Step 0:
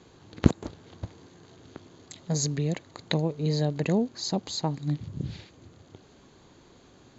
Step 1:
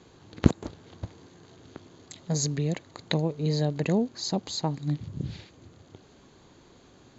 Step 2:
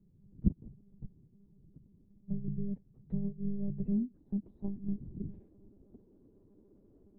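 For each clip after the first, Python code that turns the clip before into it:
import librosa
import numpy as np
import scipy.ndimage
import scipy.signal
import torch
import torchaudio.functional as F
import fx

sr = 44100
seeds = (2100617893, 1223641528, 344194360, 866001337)

y1 = x
y2 = fx.cheby_harmonics(y1, sr, harmonics=(8,), levels_db=(-35,), full_scale_db=-2.0)
y2 = fx.filter_sweep_lowpass(y2, sr, from_hz=160.0, to_hz=340.0, start_s=3.61, end_s=5.01, q=1.6)
y2 = fx.lpc_monotone(y2, sr, seeds[0], pitch_hz=200.0, order=16)
y2 = F.gain(torch.from_numpy(y2), -8.0).numpy()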